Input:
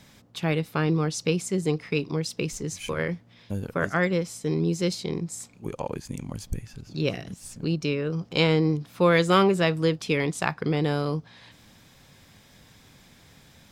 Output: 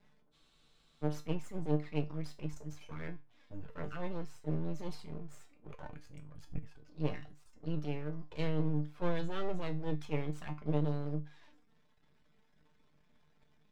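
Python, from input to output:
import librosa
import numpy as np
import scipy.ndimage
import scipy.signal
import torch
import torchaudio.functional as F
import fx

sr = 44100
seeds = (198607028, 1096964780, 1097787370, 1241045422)

y = fx.env_flanger(x, sr, rest_ms=5.1, full_db=-21.0)
y = fx.high_shelf(y, sr, hz=3100.0, db=-10.0)
y = fx.transient(y, sr, attack_db=-7, sustain_db=7)
y = fx.dereverb_blind(y, sr, rt60_s=0.66)
y = np.maximum(y, 0.0)
y = fx.high_shelf(y, sr, hz=6200.0, db=-12.0)
y = fx.comb_fb(y, sr, f0_hz=150.0, decay_s=0.26, harmonics='all', damping=0.0, mix_pct=80)
y = fx.transient(y, sr, attack_db=7, sustain_db=2)
y = fx.spec_freeze(y, sr, seeds[0], at_s=0.34, hold_s=0.69)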